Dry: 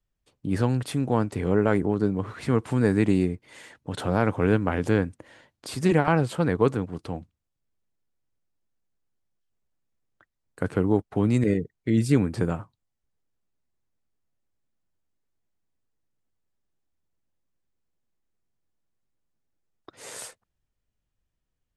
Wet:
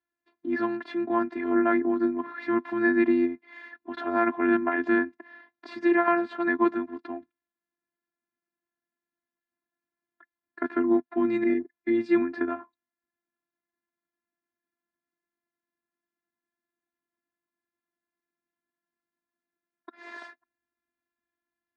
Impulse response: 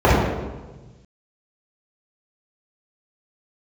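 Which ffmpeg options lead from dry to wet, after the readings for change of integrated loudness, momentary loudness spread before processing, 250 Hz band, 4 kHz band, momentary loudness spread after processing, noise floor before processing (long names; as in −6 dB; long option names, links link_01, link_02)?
−1.5 dB, 15 LU, −0.5 dB, can't be measured, 17 LU, −81 dBFS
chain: -af "afftfilt=real='hypot(re,im)*cos(PI*b)':imag='0':win_size=512:overlap=0.75,highpass=230,equalizer=frequency=250:width_type=q:width=4:gain=8,equalizer=frequency=510:width_type=q:width=4:gain=-9,equalizer=frequency=940:width_type=q:width=4:gain=4,equalizer=frequency=1700:width_type=q:width=4:gain=9,equalizer=frequency=3000:width_type=q:width=4:gain=-10,lowpass=frequency=3400:width=0.5412,lowpass=frequency=3400:width=1.3066,volume=3dB"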